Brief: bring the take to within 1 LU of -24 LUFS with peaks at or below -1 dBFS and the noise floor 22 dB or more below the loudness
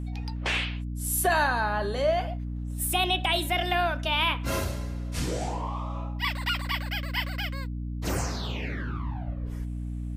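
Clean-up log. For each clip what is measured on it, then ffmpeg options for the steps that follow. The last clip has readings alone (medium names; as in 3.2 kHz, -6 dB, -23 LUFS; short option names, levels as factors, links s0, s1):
hum 60 Hz; highest harmonic 300 Hz; hum level -30 dBFS; loudness -28.5 LUFS; peak level -12.5 dBFS; loudness target -24.0 LUFS
-> -af "bandreject=f=60:t=h:w=4,bandreject=f=120:t=h:w=4,bandreject=f=180:t=h:w=4,bandreject=f=240:t=h:w=4,bandreject=f=300:t=h:w=4"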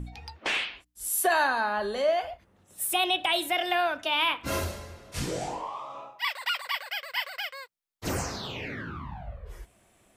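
hum not found; loudness -29.0 LUFS; peak level -14.0 dBFS; loudness target -24.0 LUFS
-> -af "volume=1.78"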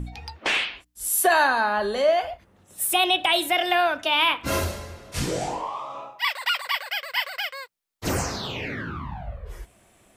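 loudness -24.0 LUFS; peak level -9.0 dBFS; noise floor -60 dBFS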